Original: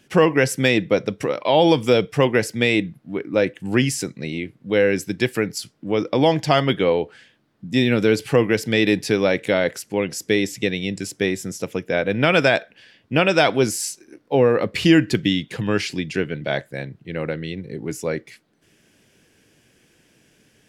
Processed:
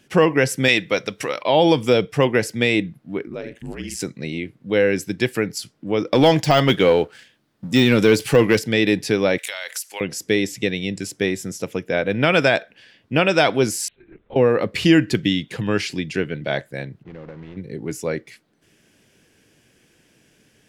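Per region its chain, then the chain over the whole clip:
0:00.68–0:01.43: tilt shelving filter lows −7 dB, about 860 Hz + upward compression, threshold −30 dBFS
0:03.27–0:04.00: double-tracking delay 48 ms −9.5 dB + downward compressor 12 to 1, threshold −23 dBFS + ring modulation 57 Hz
0:06.12–0:08.59: de-essing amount 65% + high-shelf EQ 3,900 Hz +7.5 dB + leveller curve on the samples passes 1
0:09.38–0:10.01: high-pass filter 750 Hz + spectral tilt +4.5 dB per octave + downward compressor 10 to 1, threshold −24 dBFS
0:13.88–0:14.36: downward compressor 3 to 1, threshold −38 dBFS + linear-prediction vocoder at 8 kHz whisper
0:17.03–0:17.57: one scale factor per block 3 bits + downward compressor 3 to 1, threshold −34 dBFS + head-to-tape spacing loss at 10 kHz 43 dB
whole clip: no processing

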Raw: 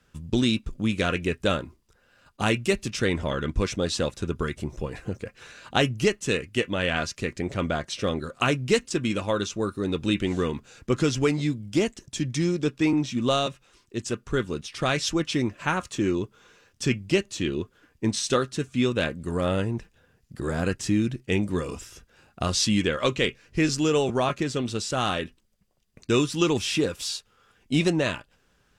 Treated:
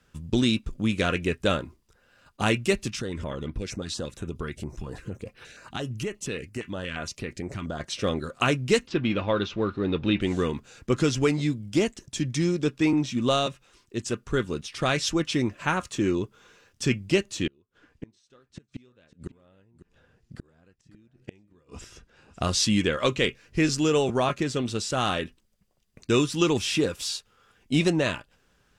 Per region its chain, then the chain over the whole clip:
0:02.89–0:07.80: downward compressor 3 to 1, threshold −29 dBFS + notch on a step sequencer 8.6 Hz 510–7,000 Hz
0:08.87–0:10.21: mu-law and A-law mismatch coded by mu + low-pass filter 4,000 Hz 24 dB per octave
0:17.47–0:22.42: gate with flip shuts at −22 dBFS, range −34 dB + high-frequency loss of the air 56 metres + single-tap delay 549 ms −15 dB
whole clip: no processing

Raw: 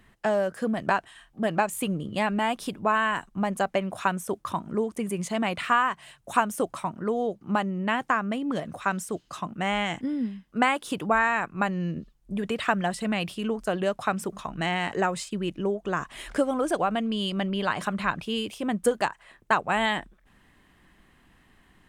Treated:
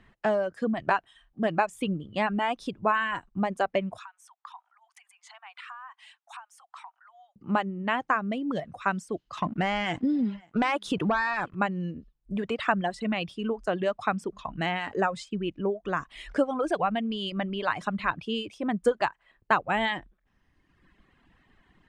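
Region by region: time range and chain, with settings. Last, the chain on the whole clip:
0:03.98–0:07.36: downward compressor 8 to 1, threshold −38 dBFS + Butterworth high-pass 750 Hz 72 dB per octave
0:09.37–0:11.55: leveller curve on the samples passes 2 + downward compressor, threshold −21 dBFS + single-tap delay 536 ms −21.5 dB
whole clip: reverb reduction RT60 1.3 s; Bessel low-pass filter 4,000 Hz, order 2

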